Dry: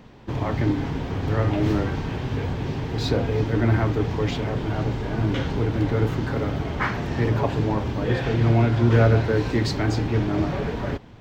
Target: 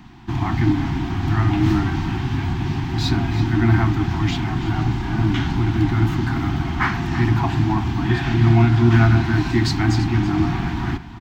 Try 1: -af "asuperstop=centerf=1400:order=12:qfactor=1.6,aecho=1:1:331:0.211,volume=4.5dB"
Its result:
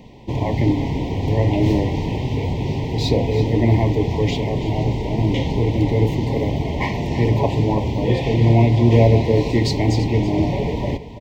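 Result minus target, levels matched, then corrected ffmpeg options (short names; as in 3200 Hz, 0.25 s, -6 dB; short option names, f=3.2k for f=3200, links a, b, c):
500 Hz band +8.0 dB
-af "asuperstop=centerf=510:order=12:qfactor=1.6,aecho=1:1:331:0.211,volume=4.5dB"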